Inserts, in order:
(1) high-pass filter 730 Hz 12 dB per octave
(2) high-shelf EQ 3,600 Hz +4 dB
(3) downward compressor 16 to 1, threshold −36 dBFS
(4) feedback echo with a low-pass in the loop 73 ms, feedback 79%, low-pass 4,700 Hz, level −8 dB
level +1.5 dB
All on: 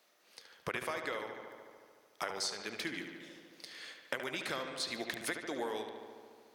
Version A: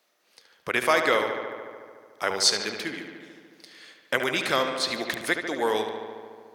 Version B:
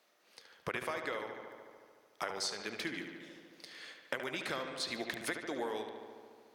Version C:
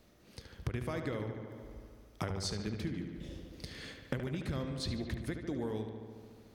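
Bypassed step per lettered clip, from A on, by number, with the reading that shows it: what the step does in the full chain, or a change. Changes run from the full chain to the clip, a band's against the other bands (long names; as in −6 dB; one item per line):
3, average gain reduction 10.0 dB
2, 8 kHz band −1.5 dB
1, 125 Hz band +22.0 dB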